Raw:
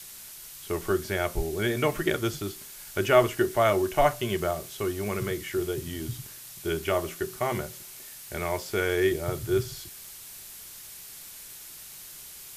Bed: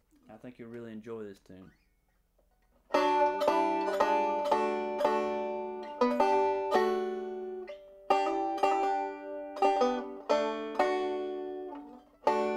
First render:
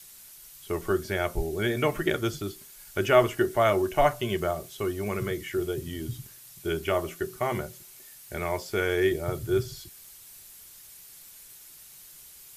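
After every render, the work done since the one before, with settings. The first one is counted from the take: noise reduction 7 dB, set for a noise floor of -45 dBFS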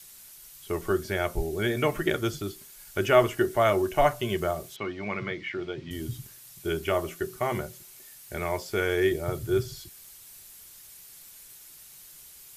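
4.76–5.91 s: cabinet simulation 150–4500 Hz, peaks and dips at 400 Hz -8 dB, 920 Hz +3 dB, 2.2 kHz +6 dB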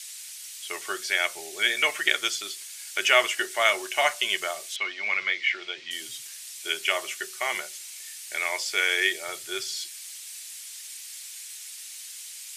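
high-pass 750 Hz 12 dB/octave; high-order bell 4.2 kHz +12 dB 2.7 oct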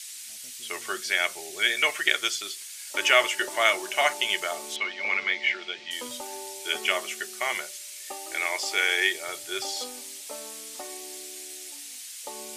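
add bed -14 dB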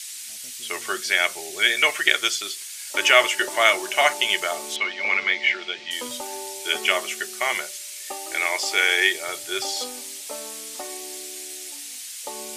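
trim +4.5 dB; peak limiter -1 dBFS, peak gain reduction 1 dB

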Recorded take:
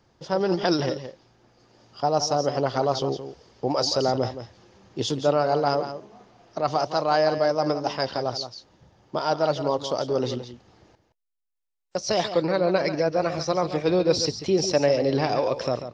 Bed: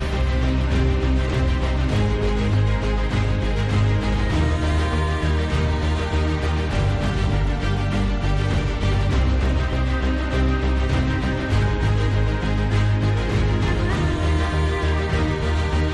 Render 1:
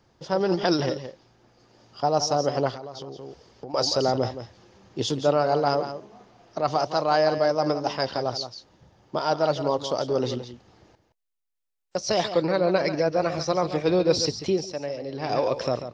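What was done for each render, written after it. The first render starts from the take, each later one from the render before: 2.70–3.74 s: compression 12:1, threshold -33 dBFS; 14.49–15.35 s: dip -11 dB, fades 0.16 s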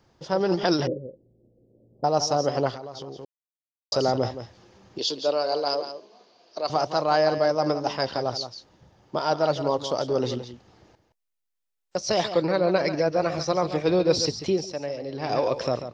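0.87–2.04 s: elliptic low-pass 540 Hz, stop band 60 dB; 3.25–3.92 s: mute; 4.98–6.70 s: cabinet simulation 430–6600 Hz, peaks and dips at 810 Hz -7 dB, 1.3 kHz -7 dB, 1.9 kHz -7 dB, 4.5 kHz +10 dB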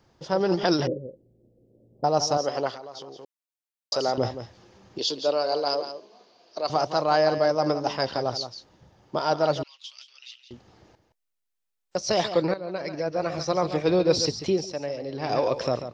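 2.37–4.18 s: high-pass 480 Hz 6 dB/octave; 9.63–10.51 s: ladder high-pass 2.4 kHz, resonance 70%; 12.54–13.64 s: fade in linear, from -15.5 dB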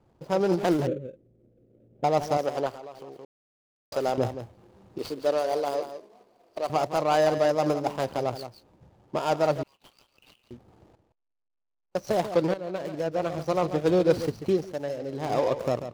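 median filter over 25 samples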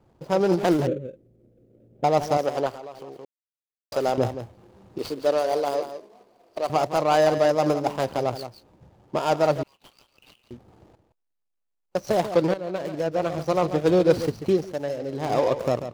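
trim +3 dB

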